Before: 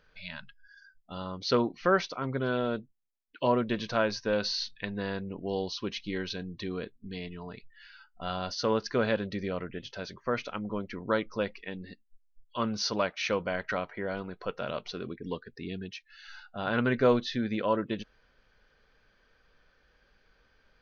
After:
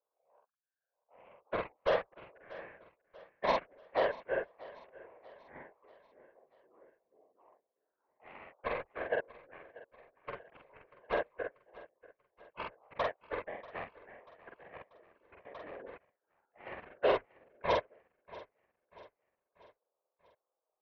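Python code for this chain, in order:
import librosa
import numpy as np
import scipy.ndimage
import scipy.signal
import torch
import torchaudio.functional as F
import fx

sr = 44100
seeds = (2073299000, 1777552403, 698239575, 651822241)

p1 = fx.tracing_dist(x, sr, depth_ms=0.031)
p2 = scipy.signal.sosfilt(scipy.signal.cheby1(3, 1.0, [530.0, 1100.0], 'bandpass', fs=sr, output='sos'), p1)
p3 = fx.tilt_eq(p2, sr, slope=-3.0)
p4 = fx.cheby_harmonics(p3, sr, harmonics=(7,), levels_db=(-15,), full_scale_db=-15.0)
p5 = fx.whisperise(p4, sr, seeds[0])
p6 = fx.doubler(p5, sr, ms=46.0, db=-2)
p7 = p6 + fx.echo_feedback(p6, sr, ms=638, feedback_pct=49, wet_db=-19.5, dry=0)
p8 = fx.env_flatten(p7, sr, amount_pct=50, at=(15.45, 15.96), fade=0.02)
y = p8 * 10.0 ** (-4.5 / 20.0)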